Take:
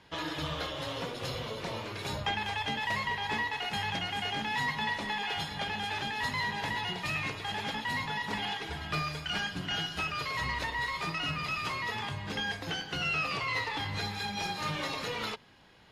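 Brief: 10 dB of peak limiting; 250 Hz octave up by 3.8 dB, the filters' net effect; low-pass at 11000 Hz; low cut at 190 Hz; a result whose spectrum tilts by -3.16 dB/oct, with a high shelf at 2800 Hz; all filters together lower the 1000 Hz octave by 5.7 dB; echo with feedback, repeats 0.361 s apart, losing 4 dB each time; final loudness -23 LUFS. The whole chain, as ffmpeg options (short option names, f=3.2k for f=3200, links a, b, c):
-af "highpass=190,lowpass=11k,equalizer=f=250:t=o:g=8,equalizer=f=1k:t=o:g=-8,highshelf=f=2.8k:g=3.5,alimiter=level_in=5dB:limit=-24dB:level=0:latency=1,volume=-5dB,aecho=1:1:361|722|1083|1444|1805|2166|2527|2888|3249:0.631|0.398|0.25|0.158|0.0994|0.0626|0.0394|0.0249|0.0157,volume=11.5dB"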